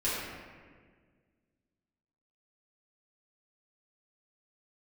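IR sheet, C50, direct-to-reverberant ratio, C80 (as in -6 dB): -2.0 dB, -11.5 dB, 0.5 dB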